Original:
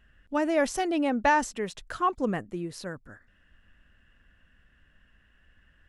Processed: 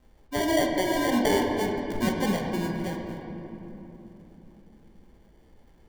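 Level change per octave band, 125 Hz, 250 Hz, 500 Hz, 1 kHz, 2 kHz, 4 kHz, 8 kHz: +8.0, +3.5, +3.0, −3.0, −0.5, +7.5, +2.5 decibels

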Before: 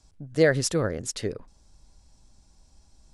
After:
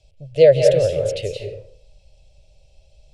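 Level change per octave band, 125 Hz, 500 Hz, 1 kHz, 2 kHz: +5.0 dB, +11.5 dB, can't be measured, −4.0 dB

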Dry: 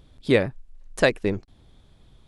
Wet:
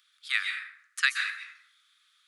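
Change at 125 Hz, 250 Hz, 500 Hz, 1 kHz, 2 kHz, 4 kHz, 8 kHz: below −40 dB, below −40 dB, below −40 dB, −8.0 dB, +1.5 dB, +1.5 dB, +1.5 dB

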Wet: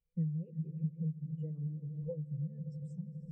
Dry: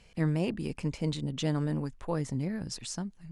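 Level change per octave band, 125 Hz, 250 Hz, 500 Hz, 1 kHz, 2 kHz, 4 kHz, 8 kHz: −4.0 dB, −8.0 dB, −12.5 dB, below −40 dB, below −40 dB, below −40 dB, below −35 dB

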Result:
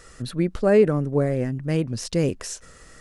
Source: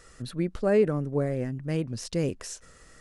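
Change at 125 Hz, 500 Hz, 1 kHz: +5.5, +5.5, +5.5 decibels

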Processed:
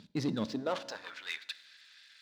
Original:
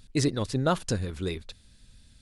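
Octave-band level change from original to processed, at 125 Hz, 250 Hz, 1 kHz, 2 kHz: −13.5, −6.5, −8.0, −2.5 decibels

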